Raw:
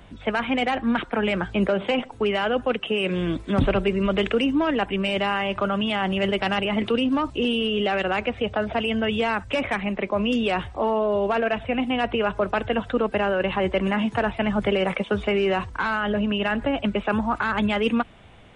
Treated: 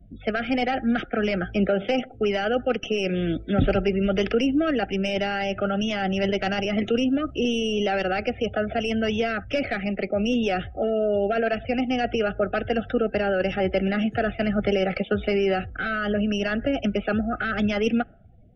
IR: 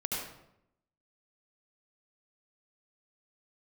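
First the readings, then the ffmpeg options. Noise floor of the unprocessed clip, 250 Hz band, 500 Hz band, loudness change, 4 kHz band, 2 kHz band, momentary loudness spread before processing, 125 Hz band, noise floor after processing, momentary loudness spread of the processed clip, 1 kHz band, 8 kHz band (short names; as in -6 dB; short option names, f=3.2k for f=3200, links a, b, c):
-44 dBFS, 0.0 dB, 0.0 dB, -1.0 dB, -3.0 dB, -2.0 dB, 3 LU, 0.0 dB, -45 dBFS, 4 LU, -3.5 dB, n/a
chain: -filter_complex "[0:a]asuperstop=centerf=1000:order=20:qfactor=2.3,acrossover=split=460|1600[a][b][c];[c]aeval=exprs='clip(val(0),-1,0.0126)':c=same[d];[a][b][d]amix=inputs=3:normalize=0,afftdn=nr=32:nf=-43"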